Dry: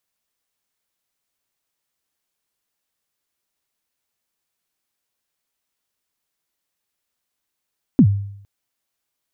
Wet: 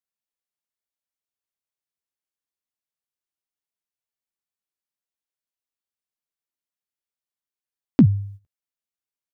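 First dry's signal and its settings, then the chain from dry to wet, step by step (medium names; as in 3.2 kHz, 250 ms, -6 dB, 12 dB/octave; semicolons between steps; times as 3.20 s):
kick drum length 0.46 s, from 300 Hz, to 100 Hz, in 72 ms, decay 0.70 s, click off, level -5 dB
gate -36 dBFS, range -16 dB; doubling 14 ms -13.5 dB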